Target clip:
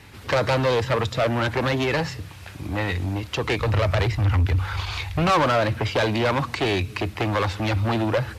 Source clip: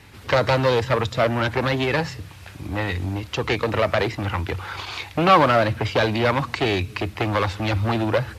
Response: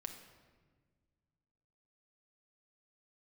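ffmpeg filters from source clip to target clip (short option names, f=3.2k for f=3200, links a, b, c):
-filter_complex "[0:a]asplit=3[a][b][c];[a]afade=t=out:st=3.59:d=0.02[d];[b]asubboost=boost=10:cutoff=88,afade=t=in:st=3.59:d=0.02,afade=t=out:st=5.33:d=0.02[e];[c]afade=t=in:st=5.33:d=0.02[f];[d][e][f]amix=inputs=3:normalize=0,asoftclip=type=tanh:threshold=-16dB,volume=1dB"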